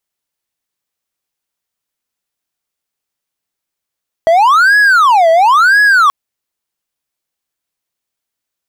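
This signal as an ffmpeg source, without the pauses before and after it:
-f lavfi -i "aevalsrc='0.708*(1-4*abs(mod((1165.5*t-514.5/(2*PI*0.97)*sin(2*PI*0.97*t))+0.25,1)-0.5))':d=1.83:s=44100"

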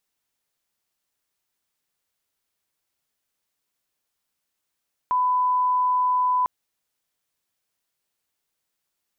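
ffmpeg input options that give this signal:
-f lavfi -i "sine=f=1000:d=1.35:r=44100,volume=0.06dB"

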